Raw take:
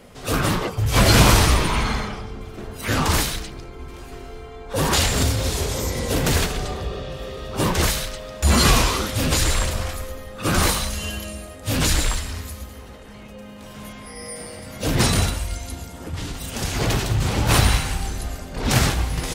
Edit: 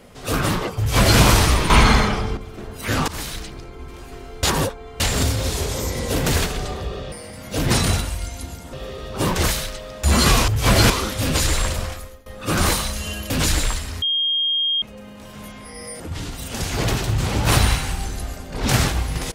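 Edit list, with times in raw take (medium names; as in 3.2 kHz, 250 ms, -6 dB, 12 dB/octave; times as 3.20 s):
0.78–1.20 s: copy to 8.87 s
1.70–2.37 s: gain +9 dB
3.08–3.47 s: fade in, from -19.5 dB
4.43–5.00 s: reverse
9.77–10.23 s: fade out, to -21 dB
11.27–11.71 s: delete
12.43–13.23 s: bleep 3.23 kHz -17.5 dBFS
14.41–16.02 s: move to 7.12 s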